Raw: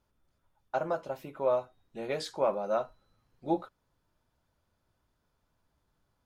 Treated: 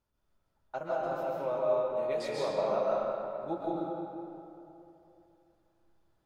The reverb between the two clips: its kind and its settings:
comb and all-pass reverb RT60 2.9 s, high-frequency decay 0.6×, pre-delay 95 ms, DRR −6 dB
level −7 dB

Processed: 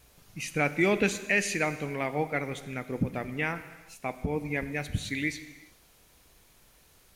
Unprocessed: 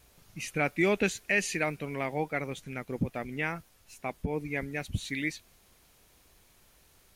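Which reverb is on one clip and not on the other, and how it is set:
reverb whose tail is shaped and stops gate 450 ms falling, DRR 10.5 dB
level +1.5 dB

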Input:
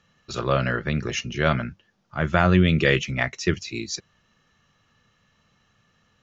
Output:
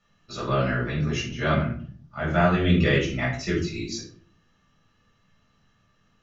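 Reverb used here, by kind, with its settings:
rectangular room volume 450 cubic metres, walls furnished, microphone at 6.7 metres
level −12 dB

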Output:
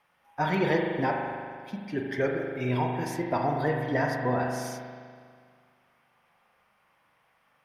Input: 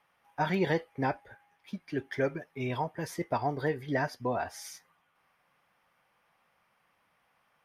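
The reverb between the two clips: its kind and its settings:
spring reverb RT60 2 s, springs 40 ms, chirp 70 ms, DRR 0.5 dB
level +1.5 dB

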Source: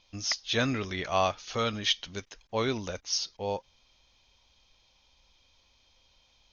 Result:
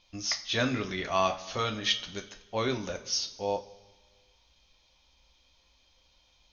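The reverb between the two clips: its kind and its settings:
coupled-rooms reverb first 0.29 s, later 1.5 s, from −16 dB, DRR 4.5 dB
level −1.5 dB

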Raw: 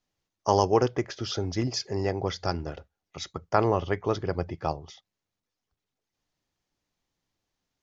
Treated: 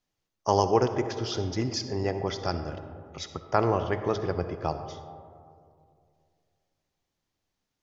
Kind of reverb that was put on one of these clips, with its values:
comb and all-pass reverb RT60 2.4 s, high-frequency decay 0.3×, pre-delay 25 ms, DRR 9 dB
level −1 dB

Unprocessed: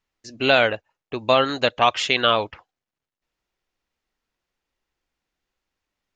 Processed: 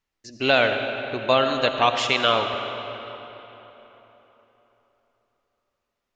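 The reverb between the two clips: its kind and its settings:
comb and all-pass reverb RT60 3.8 s, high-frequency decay 0.7×, pre-delay 40 ms, DRR 5.5 dB
level −2 dB

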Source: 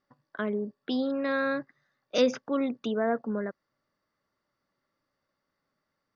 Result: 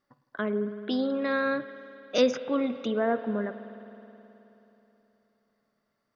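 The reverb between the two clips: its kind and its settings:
spring reverb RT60 3.4 s, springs 53 ms, chirp 65 ms, DRR 11 dB
level +1 dB

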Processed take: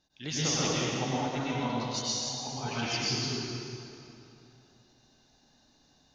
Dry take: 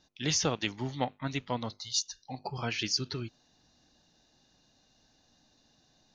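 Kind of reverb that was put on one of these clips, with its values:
dense smooth reverb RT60 2.9 s, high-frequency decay 0.75×, pre-delay 90 ms, DRR −9 dB
level −7 dB

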